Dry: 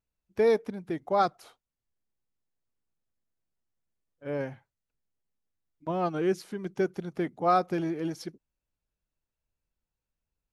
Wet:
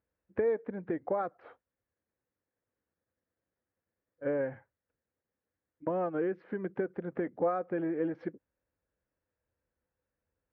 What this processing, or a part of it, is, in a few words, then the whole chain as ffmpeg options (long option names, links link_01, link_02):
bass amplifier: -af "acompressor=threshold=-36dB:ratio=6,highpass=71,equalizer=frequency=85:width_type=q:width=4:gain=4,equalizer=frequency=150:width_type=q:width=4:gain=-4,equalizer=frequency=300:width_type=q:width=4:gain=4,equalizer=frequency=510:width_type=q:width=4:gain=10,equalizer=frequency=1700:width_type=q:width=4:gain=6,lowpass=frequency=2100:width=0.5412,lowpass=frequency=2100:width=1.3066,volume=3dB"